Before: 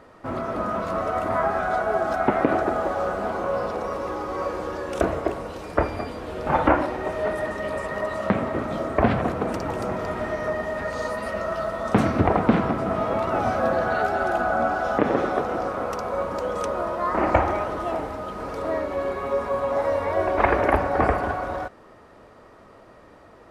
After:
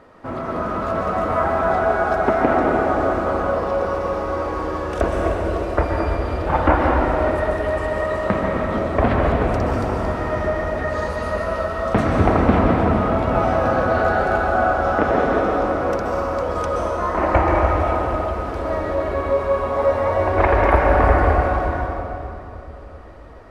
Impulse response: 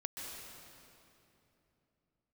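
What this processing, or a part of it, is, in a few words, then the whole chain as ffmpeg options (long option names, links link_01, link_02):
swimming-pool hall: -filter_complex "[0:a]asubboost=boost=3:cutoff=81[link_01];[1:a]atrim=start_sample=2205[link_02];[link_01][link_02]afir=irnorm=-1:irlink=0,highshelf=frequency=5400:gain=-6,volume=5dB"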